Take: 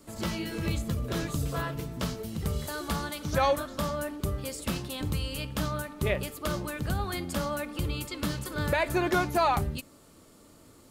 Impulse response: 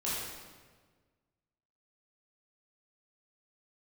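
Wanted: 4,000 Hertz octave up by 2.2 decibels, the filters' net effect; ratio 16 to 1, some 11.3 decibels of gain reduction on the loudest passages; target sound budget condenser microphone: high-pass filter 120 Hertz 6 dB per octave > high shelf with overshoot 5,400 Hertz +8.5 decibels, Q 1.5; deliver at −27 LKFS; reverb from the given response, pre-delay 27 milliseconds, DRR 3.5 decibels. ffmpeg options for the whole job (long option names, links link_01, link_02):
-filter_complex "[0:a]equalizer=frequency=4000:width_type=o:gain=4,acompressor=threshold=-31dB:ratio=16,asplit=2[link_01][link_02];[1:a]atrim=start_sample=2205,adelay=27[link_03];[link_02][link_03]afir=irnorm=-1:irlink=0,volume=-9dB[link_04];[link_01][link_04]amix=inputs=2:normalize=0,highpass=frequency=120:poles=1,highshelf=frequency=5400:width_type=q:width=1.5:gain=8.5,volume=6dB"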